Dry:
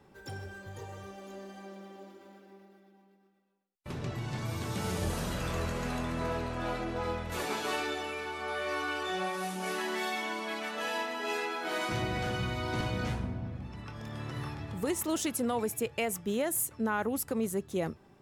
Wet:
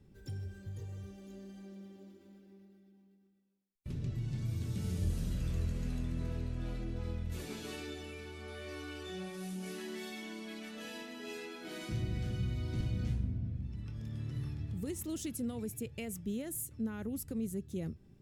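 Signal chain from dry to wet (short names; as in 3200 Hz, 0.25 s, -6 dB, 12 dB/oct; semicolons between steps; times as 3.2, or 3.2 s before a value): passive tone stack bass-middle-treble 10-0-1; in parallel at -2 dB: compressor, threshold -56 dBFS, peak gain reduction 16 dB; on the sum: bell 250 Hz +2.5 dB 2.4 oct; gain +9 dB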